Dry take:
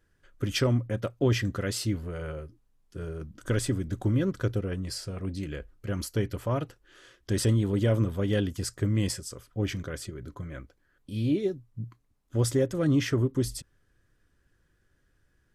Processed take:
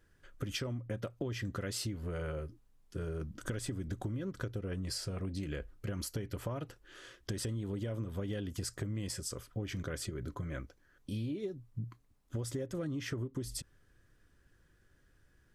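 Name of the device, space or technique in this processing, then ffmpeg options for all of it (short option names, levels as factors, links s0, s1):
serial compression, peaks first: -filter_complex "[0:a]acompressor=threshold=0.0282:ratio=6,acompressor=threshold=0.0141:ratio=3,asettb=1/sr,asplit=3[s0][s1][s2];[s0]atrim=end=10.474[s3];[s1]atrim=start=10.47:end=11.18,asetpts=PTS-STARTPTS,afade=t=in:d=0.004:c=qsin,afade=t=out:st=0.706:d=0.004:c=qsin,equalizer=f=5900:w=4.7:g=5.5[s4];[s2]atrim=start=11.176[s5];[s3][s4]acrossfade=d=0.004:c1=hsin:c2=qsin[s6];[s6][s5]acrossfade=d=0.004:c1=qsin:c2=hsin,volume=1.19"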